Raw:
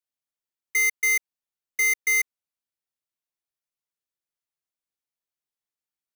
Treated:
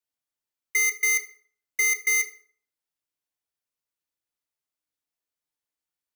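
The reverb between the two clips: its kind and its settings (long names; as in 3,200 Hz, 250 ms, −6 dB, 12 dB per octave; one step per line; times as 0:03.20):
feedback delay network reverb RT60 0.51 s, low-frequency decay 0.9×, high-frequency decay 0.75×, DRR 5.5 dB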